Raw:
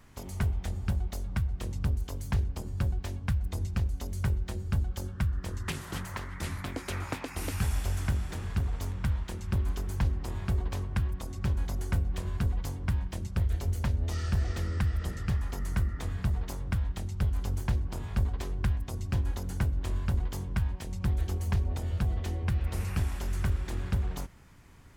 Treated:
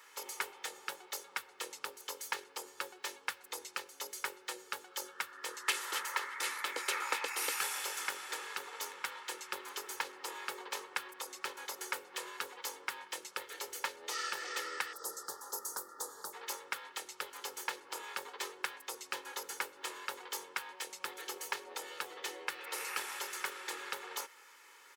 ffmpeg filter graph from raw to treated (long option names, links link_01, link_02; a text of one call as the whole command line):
ffmpeg -i in.wav -filter_complex "[0:a]asettb=1/sr,asplit=3[link_01][link_02][link_03];[link_01]atrim=end=14.934[link_04];[link_02]atrim=start=14.93:end=16.33,asetpts=PTS-STARTPTS,afade=type=in:duration=0.004:curve=qsin,afade=type=out:start_time=1.396:duration=0.004:curve=qsin,asuperstop=centerf=2500:order=4:qfactor=0.59,highshelf=frequency=5000:gain=6.5[link_05];[link_03]atrim=start=16.326[link_06];[link_04][link_05]acrossfade=duration=0.004:curve1=hsin:curve2=qsin[link_07];[link_07][link_06]acrossfade=duration=0.004:curve1=qsin:curve2=hsin,highpass=frequency=540:width=0.5412,highpass=frequency=540:width=1.3066,equalizer=frequency=690:width_type=o:width=0.4:gain=-14.5,aecho=1:1:2.3:0.44,volume=5dB" out.wav